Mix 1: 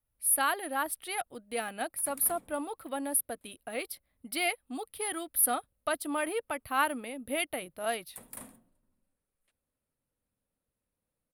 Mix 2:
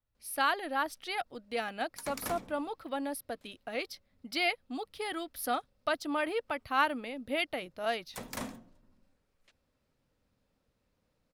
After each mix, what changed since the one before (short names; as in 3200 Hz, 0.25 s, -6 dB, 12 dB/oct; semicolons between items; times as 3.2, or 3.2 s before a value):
background +11.0 dB; master: add resonant high shelf 7700 Hz -10 dB, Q 3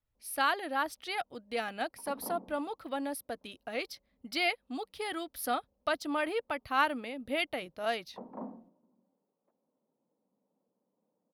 background: add Chebyshev band-pass 190–950 Hz, order 3